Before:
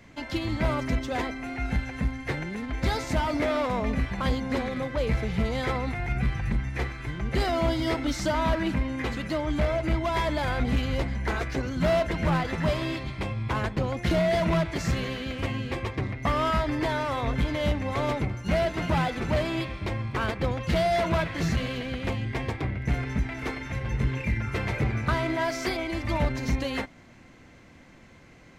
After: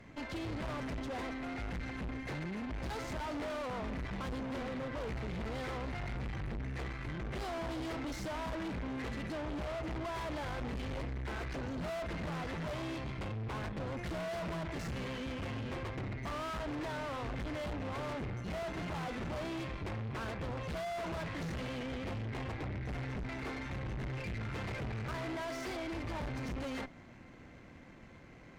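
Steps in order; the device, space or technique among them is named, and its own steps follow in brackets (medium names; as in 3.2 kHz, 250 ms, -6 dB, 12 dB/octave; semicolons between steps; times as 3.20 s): tube preamp driven hard (valve stage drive 39 dB, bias 0.7; treble shelf 3.4 kHz -9 dB); trim +2 dB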